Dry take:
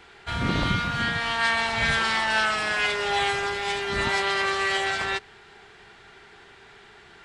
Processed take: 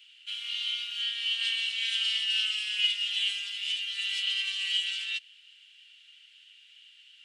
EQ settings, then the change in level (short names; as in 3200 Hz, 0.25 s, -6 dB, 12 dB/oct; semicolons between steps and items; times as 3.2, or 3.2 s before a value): ladder high-pass 2800 Hz, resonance 85%; high shelf 7200 Hz +11 dB; 0.0 dB